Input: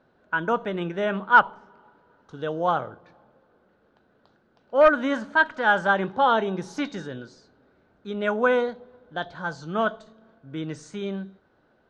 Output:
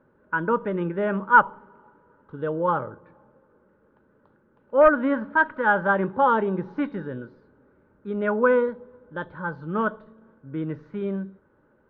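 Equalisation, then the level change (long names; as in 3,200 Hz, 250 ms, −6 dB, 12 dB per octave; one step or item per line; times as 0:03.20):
Butterworth band-reject 710 Hz, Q 3.9
low-pass filter 1,700 Hz 12 dB per octave
high-frequency loss of the air 230 metres
+3.0 dB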